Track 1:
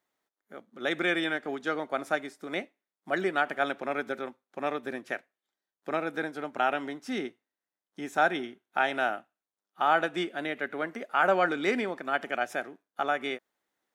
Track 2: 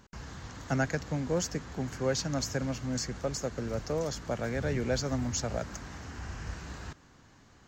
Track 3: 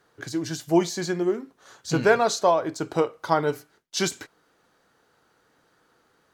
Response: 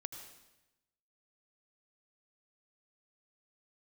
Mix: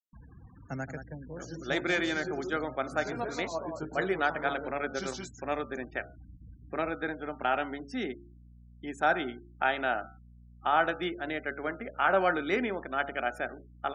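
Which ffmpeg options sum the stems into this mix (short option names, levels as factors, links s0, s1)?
-filter_complex "[0:a]bandreject=f=69.89:t=h:w=4,bandreject=f=139.78:t=h:w=4,bandreject=f=209.67:t=h:w=4,bandreject=f=279.56:t=h:w=4,bandreject=f=349.45:t=h:w=4,bandreject=f=419.34:t=h:w=4,bandreject=f=489.23:t=h:w=4,bandreject=f=559.12:t=h:w=4,bandreject=f=629.01:t=h:w=4,bandreject=f=698.9:t=h:w=4,bandreject=f=768.79:t=h:w=4,bandreject=f=838.68:t=h:w=4,bandreject=f=908.57:t=h:w=4,bandreject=f=978.46:t=h:w=4,bandreject=f=1048.35:t=h:w=4,bandreject=f=1118.24:t=h:w=4,bandreject=f=1188.13:t=h:w=4,bandreject=f=1258.02:t=h:w=4,bandreject=f=1327.91:t=h:w=4,bandreject=f=1397.8:t=h:w=4,bandreject=f=1467.69:t=h:w=4,bandreject=f=1537.58:t=h:w=4,adynamicequalizer=threshold=0.00282:dfrequency=5800:dqfactor=1:tfrequency=5800:tqfactor=1:attack=5:release=100:ratio=0.375:range=3:mode=cutabove:tftype=bell,aeval=exprs='val(0)+0.00282*(sin(2*PI*60*n/s)+sin(2*PI*2*60*n/s)/2+sin(2*PI*3*60*n/s)/3+sin(2*PI*4*60*n/s)/4+sin(2*PI*5*60*n/s)/5)':c=same,adelay=850,volume=0.891[s0];[1:a]volume=1.41,afade=t=out:st=0.71:d=0.73:silence=0.375837,afade=t=out:st=3:d=0.71:silence=0.398107,afade=t=in:st=5.16:d=0.76:silence=0.298538,asplit=3[s1][s2][s3];[s2]volume=0.376[s4];[2:a]alimiter=limit=0.15:level=0:latency=1:release=135,flanger=delay=16:depth=3.4:speed=0.52,adelay=1000,volume=0.708,asplit=2[s5][s6];[s6]volume=0.376[s7];[s3]apad=whole_len=323666[s8];[s5][s8]sidechaincompress=threshold=0.001:ratio=16:attack=34:release=128[s9];[s4][s7]amix=inputs=2:normalize=0,aecho=0:1:175:1[s10];[s0][s1][s9][s10]amix=inputs=4:normalize=0,afftfilt=real='re*gte(hypot(re,im),0.00562)':imag='im*gte(hypot(re,im),0.00562)':win_size=1024:overlap=0.75"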